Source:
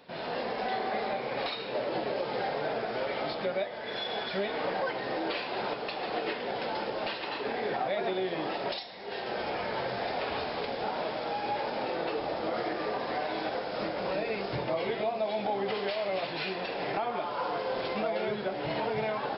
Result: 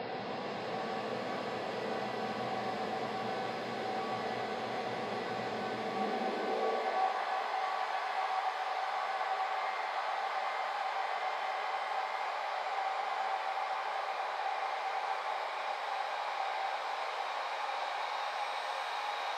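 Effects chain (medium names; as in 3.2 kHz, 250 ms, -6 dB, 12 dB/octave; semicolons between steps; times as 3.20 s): Paulstretch 21×, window 1.00 s, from 0.45 s; high-pass sweep 110 Hz -> 920 Hz, 5.69–7.09 s; pitch-shifted reverb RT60 3.1 s, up +7 st, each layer -8 dB, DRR 1 dB; trim -7.5 dB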